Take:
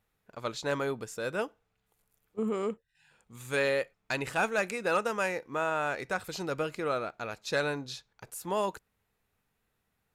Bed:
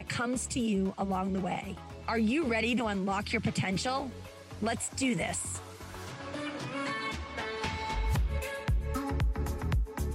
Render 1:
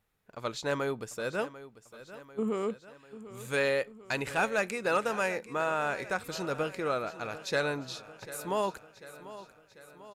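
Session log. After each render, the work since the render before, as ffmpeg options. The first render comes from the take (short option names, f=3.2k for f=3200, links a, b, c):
-af "aecho=1:1:744|1488|2232|2976|3720|4464:0.168|0.0957|0.0545|0.0311|0.0177|0.0101"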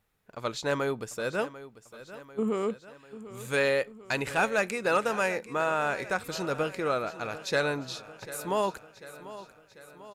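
-af "volume=2.5dB"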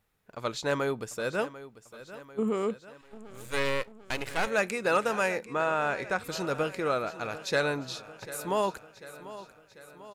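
-filter_complex "[0:a]asettb=1/sr,asplit=3[a][b][c];[a]atrim=end=3.014[d];[b]atrim=start=3.01:end=4.47,asetpts=PTS-STARTPTS,afade=t=in:d=0.004:c=qsin,afade=t=out:st=1.456:d=0.004:c=qsin,aeval=exprs='max(val(0),0)':c=same[e];[c]atrim=start=4.466[f];[d][e]acrossfade=d=0.004:c1=hsin:c2=qsin[g];[g][f]acrossfade=d=0.004:c1=qsin:c2=hsin,asettb=1/sr,asplit=3[h][i][j];[h]atrim=end=5.454[k];[i]atrim=start=5.45:end=6.23,asetpts=PTS-STARTPTS,afade=t=in:d=0.004:c=qsin,afade=t=out:st=0.776:d=0.004:c=qsin,highshelf=f=8.6k:g=-11[l];[j]atrim=start=6.226[m];[k][l]acrossfade=d=0.004:c1=hsin:c2=qsin[n];[n][m]acrossfade=d=0.004:c1=qsin:c2=hsin"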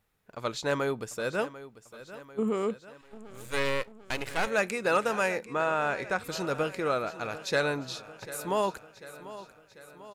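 -af anull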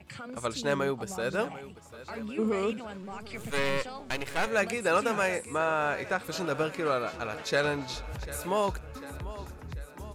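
-filter_complex "[1:a]volume=-10dB[a];[0:a][a]amix=inputs=2:normalize=0"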